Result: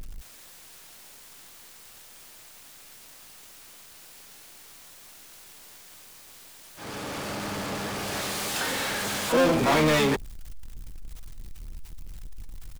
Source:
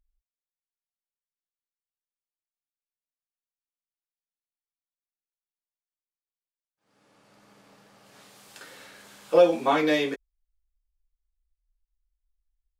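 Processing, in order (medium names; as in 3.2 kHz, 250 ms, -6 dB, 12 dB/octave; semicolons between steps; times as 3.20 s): saturation -19 dBFS, distortion -9 dB; power-law waveshaper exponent 0.35; harmony voices -12 st -6 dB, +12 st -11 dB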